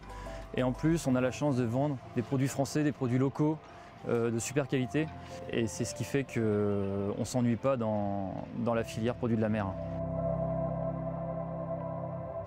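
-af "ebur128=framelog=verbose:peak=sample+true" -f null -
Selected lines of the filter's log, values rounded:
Integrated loudness:
  I:         -32.3 LUFS
  Threshold: -42.5 LUFS
Loudness range:
  LRA:         2.5 LU
  Threshold: -52.3 LUFS
  LRA low:   -33.4 LUFS
  LRA high:  -31.0 LUFS
Sample peak:
  Peak:      -15.3 dBFS
True peak:
  Peak:      -15.3 dBFS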